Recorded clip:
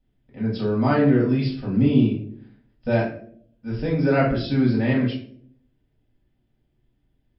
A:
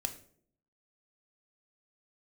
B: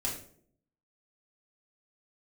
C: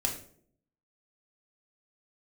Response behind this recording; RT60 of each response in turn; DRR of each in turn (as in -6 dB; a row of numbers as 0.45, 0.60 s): B; 0.60, 0.60, 0.60 s; 6.0, -5.0, 0.0 dB